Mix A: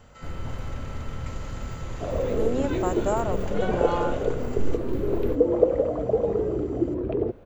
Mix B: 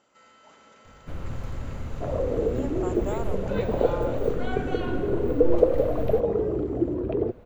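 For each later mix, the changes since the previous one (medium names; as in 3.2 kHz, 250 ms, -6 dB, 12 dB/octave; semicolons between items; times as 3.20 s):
speech -8.0 dB; first sound: entry +0.85 s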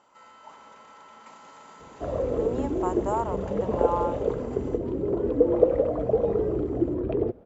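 speech: add peaking EQ 960 Hz +13 dB 0.6 oct; first sound: muted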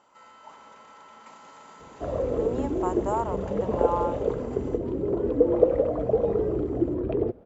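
no change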